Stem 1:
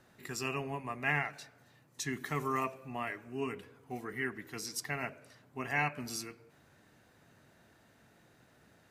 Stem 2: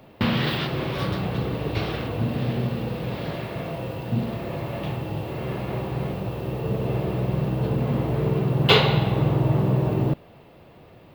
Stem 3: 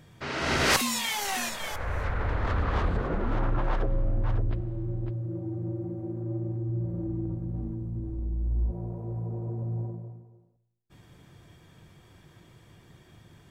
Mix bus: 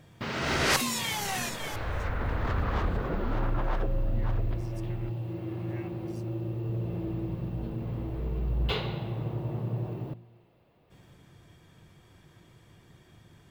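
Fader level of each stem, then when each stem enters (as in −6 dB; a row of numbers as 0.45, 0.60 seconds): −19.5, −15.5, −2.0 decibels; 0.00, 0.00, 0.00 seconds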